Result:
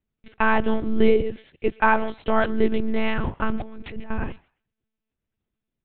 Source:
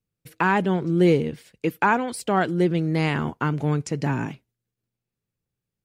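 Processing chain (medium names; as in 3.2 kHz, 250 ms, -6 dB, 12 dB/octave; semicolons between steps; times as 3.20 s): 3.57–4.11 s: compressor with a negative ratio -34 dBFS, ratio -1; thinning echo 130 ms, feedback 19%, high-pass 770 Hz, level -22 dB; monotone LPC vocoder at 8 kHz 220 Hz; trim +2 dB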